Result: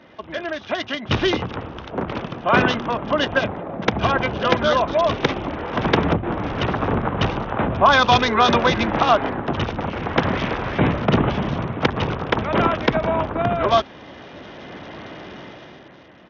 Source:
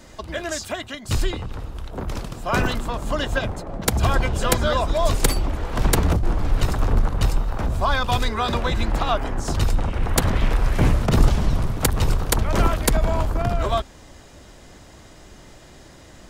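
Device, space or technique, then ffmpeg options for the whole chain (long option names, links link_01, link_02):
Bluetooth headset: -af "highpass=160,dynaudnorm=framelen=150:gausssize=13:maxgain=14dB,aresample=8000,aresample=44100" -ar 48000 -c:a sbc -b:a 64k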